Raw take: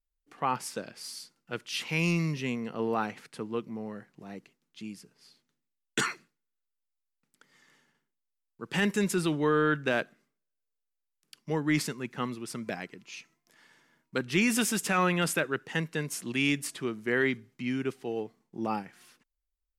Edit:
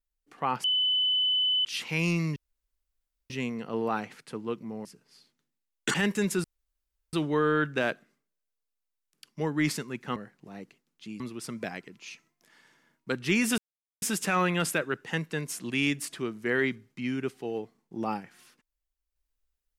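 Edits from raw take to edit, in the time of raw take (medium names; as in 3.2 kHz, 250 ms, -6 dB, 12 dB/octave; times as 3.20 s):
0.64–1.65 s: bleep 3.01 kHz -22.5 dBFS
2.36 s: insert room tone 0.94 s
3.91–4.95 s: move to 12.26 s
6.04–8.73 s: delete
9.23 s: insert room tone 0.69 s
14.64 s: insert silence 0.44 s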